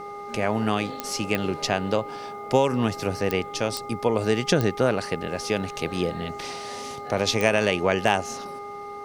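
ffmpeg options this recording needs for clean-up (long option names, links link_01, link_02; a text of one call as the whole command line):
ffmpeg -i in.wav -af "adeclick=threshold=4,bandreject=frequency=408.1:width_type=h:width=4,bandreject=frequency=816.2:width_type=h:width=4,bandreject=frequency=1224.3:width_type=h:width=4,bandreject=frequency=2100:width=30" out.wav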